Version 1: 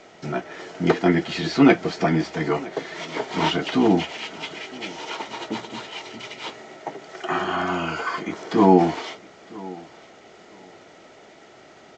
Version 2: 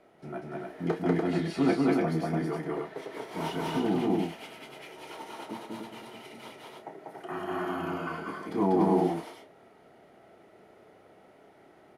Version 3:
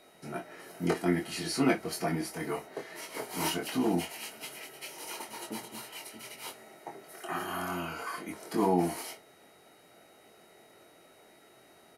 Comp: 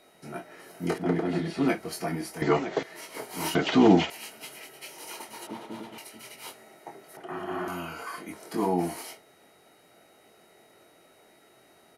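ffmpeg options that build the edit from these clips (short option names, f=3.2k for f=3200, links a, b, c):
-filter_complex "[1:a]asplit=3[a][b][c];[0:a]asplit=2[d][e];[2:a]asplit=6[f][g][h][i][j][k];[f]atrim=end=0.982[l];[a]atrim=start=0.978:end=1.682[m];[g]atrim=start=1.678:end=2.422[n];[d]atrim=start=2.418:end=2.832[o];[h]atrim=start=2.828:end=3.552[p];[e]atrim=start=3.548:end=4.102[q];[i]atrim=start=4.098:end=5.472[r];[b]atrim=start=5.468:end=5.982[s];[j]atrim=start=5.978:end=7.172[t];[c]atrim=start=7.168:end=7.682[u];[k]atrim=start=7.678[v];[l][m]acrossfade=d=0.004:c1=hsin:c2=hsin[w];[w][n]acrossfade=d=0.004:c1=hsin:c2=hsin[x];[x][o]acrossfade=d=0.004:c1=hsin:c2=hsin[y];[y][p]acrossfade=d=0.004:c1=hsin:c2=hsin[z];[z][q]acrossfade=d=0.004:c1=hsin:c2=hsin[aa];[aa][r]acrossfade=d=0.004:c1=hsin:c2=hsin[ab];[ab][s]acrossfade=d=0.004:c1=hsin:c2=hsin[ac];[ac][t]acrossfade=d=0.004:c1=hsin:c2=hsin[ad];[ad][u]acrossfade=d=0.004:c1=hsin:c2=hsin[ae];[ae][v]acrossfade=d=0.004:c1=hsin:c2=hsin"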